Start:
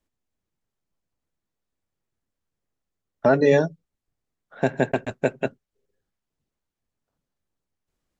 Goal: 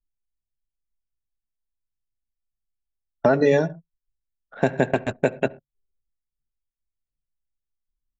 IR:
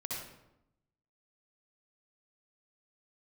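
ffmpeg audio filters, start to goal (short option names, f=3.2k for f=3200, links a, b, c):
-filter_complex "[0:a]asplit=2[a][b];[1:a]atrim=start_sample=2205,atrim=end_sample=6174[c];[b][c]afir=irnorm=-1:irlink=0,volume=-20dB[d];[a][d]amix=inputs=2:normalize=0,acompressor=threshold=-19dB:ratio=2.5,anlmdn=0.0251,volume=3.5dB"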